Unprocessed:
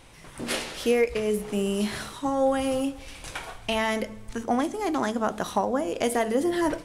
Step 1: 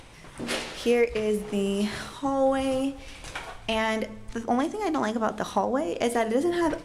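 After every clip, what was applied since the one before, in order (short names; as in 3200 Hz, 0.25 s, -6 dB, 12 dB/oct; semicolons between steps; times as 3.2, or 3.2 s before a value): upward compressor, threshold -43 dBFS; high shelf 11000 Hz -10.5 dB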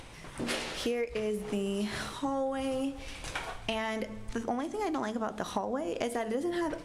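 compressor, threshold -29 dBFS, peak gain reduction 11 dB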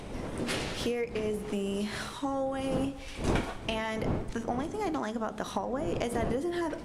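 wind noise 370 Hz -38 dBFS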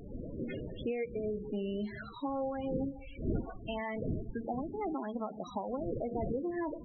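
loudest bins only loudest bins 16; gain -3.5 dB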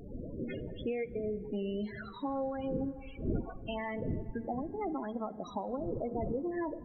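plate-style reverb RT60 4.5 s, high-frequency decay 0.3×, DRR 18.5 dB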